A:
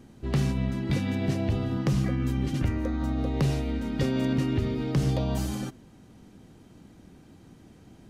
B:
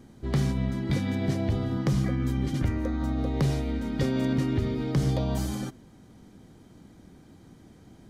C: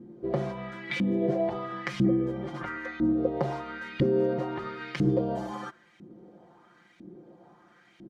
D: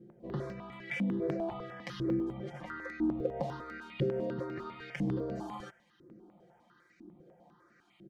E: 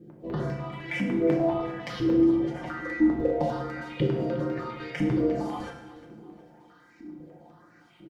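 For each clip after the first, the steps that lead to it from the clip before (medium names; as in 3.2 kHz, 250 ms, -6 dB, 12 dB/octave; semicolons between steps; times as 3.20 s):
band-stop 2.7 kHz, Q 8.1
comb 5.7 ms, depth 94%; LFO band-pass saw up 1 Hz 260–2600 Hz; trim +8 dB
in parallel at -11.5 dB: hard clipper -26.5 dBFS, distortion -8 dB; on the sum: stepped phaser 10 Hz 260–3300 Hz; trim -5.5 dB
feedback delay 360 ms, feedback 43%, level -18 dB; FDN reverb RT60 0.87 s, low-frequency decay 1.25×, high-frequency decay 0.9×, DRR 0 dB; trim +5 dB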